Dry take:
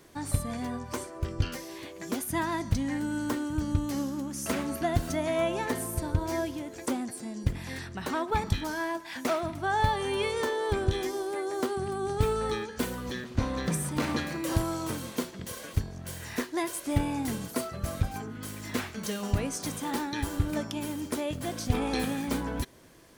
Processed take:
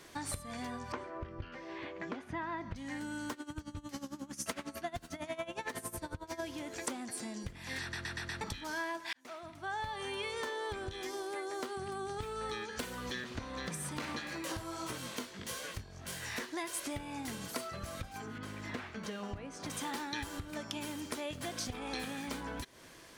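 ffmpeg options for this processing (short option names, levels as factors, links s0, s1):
-filter_complex "[0:a]asettb=1/sr,asplit=3[s0][s1][s2];[s0]atrim=end=0.924[s3];[s1]atrim=start=0.92:end=2.76,asetpts=PTS-STARTPTS,afade=t=in:d=0.004:c=qsin,afade=t=out:st=1.836:d=0.004:c=qsin,lowpass=2000[s4];[s2]atrim=start=2.756[s5];[s3][s4]acrossfade=d=0.004:c1=hsin:c2=qsin[s6];[s6][s5]acrossfade=d=0.004:c1=qsin:c2=hsin,asettb=1/sr,asplit=3[s7][s8][s9];[s7]atrim=end=3.324[s10];[s8]atrim=start=3.32:end=6.4,asetpts=PTS-STARTPTS,afade=t=in:d=0.004:c=qsin,afade=t=out:st=3.076:d=0.004:c=qsin,aeval=exprs='val(0)*pow(10,-19*(0.5-0.5*cos(2*PI*11*n/s))/20)':c=same[s11];[s9]atrim=start=6.396[s12];[s10][s11]acrossfade=d=0.004:c1=hsin:c2=qsin[s13];[s13][s12]acrossfade=d=0.004:c1=qsin:c2=hsin,asplit=3[s14][s15][s16];[s14]afade=t=out:st=14.18:d=0.02[s17];[s15]flanger=delay=15.5:depth=5.4:speed=1.6,afade=t=in:st=14.18:d=0.02,afade=t=out:st=16.46:d=0.02[s18];[s16]afade=t=in:st=16.46:d=0.02[s19];[s17][s18][s19]amix=inputs=3:normalize=0,asettb=1/sr,asplit=3[s20][s21][s22];[s20]atrim=end=18.384[s23];[s21]atrim=start=18.38:end=19.7,asetpts=PTS-STARTPTS,afade=t=in:d=0.004:c=qsin,afade=t=out:st=1.316:d=0.004:c=qsin,lowpass=f=1400:p=1[s24];[s22]atrim=start=19.696[s25];[s23][s24]acrossfade=d=0.004:c1=hsin:c2=qsin[s26];[s26][s25]acrossfade=d=0.004:c1=qsin:c2=hsin,asplit=7[s27][s28][s29][s30][s31][s32][s33];[s27]atrim=end=7.932[s34];[s28]atrim=start=7.808:end=7.932[s35];[s29]atrim=start=7.808:end=7.932[s36];[s30]atrim=start=7.808:end=7.932[s37];[s31]atrim=start=7.808:end=7.932[s38];[s32]atrim=start=8.408:end=9.13,asetpts=PTS-STARTPTS,afade=t=out:st=0.718:d=0.004:c=hsin[s39];[s33]atrim=start=9.13,asetpts=PTS-STARTPTS,afade=t=in:d=1.94[s40];[s34][s35]acrossfade=d=0.004:c1=hsin:c2=hsin[s41];[s41][s36]acrossfade=d=0.004:c1=hsin:c2=hsin[s42];[s42][s37]acrossfade=d=0.004:c1=hsin:c2=hsin[s43];[s43][s38]acrossfade=d=0.004:c1=hsin:c2=hsin[s44];[s39][s40]concat=n=2:v=0:a=1[s45];[s44][s45]acrossfade=d=0.004:c1=hsin:c2=hsin,highshelf=f=10000:g=-11,acompressor=threshold=0.0141:ratio=6,tiltshelf=f=780:g=-5,volume=1.19"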